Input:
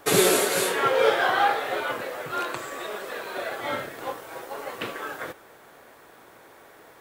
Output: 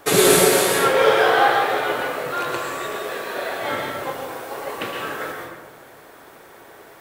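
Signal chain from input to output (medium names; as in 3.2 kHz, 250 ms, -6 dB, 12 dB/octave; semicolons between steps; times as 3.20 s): on a send: treble shelf 4.7 kHz +7.5 dB + reverberation RT60 1.3 s, pre-delay 109 ms, DRR 1 dB; on the sum: trim +3 dB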